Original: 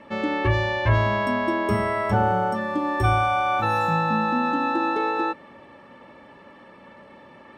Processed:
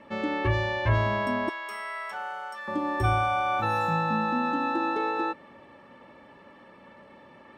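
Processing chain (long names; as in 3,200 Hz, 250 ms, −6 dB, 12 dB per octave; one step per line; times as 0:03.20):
0:01.49–0:02.68: high-pass filter 1,400 Hz 12 dB per octave
level −4 dB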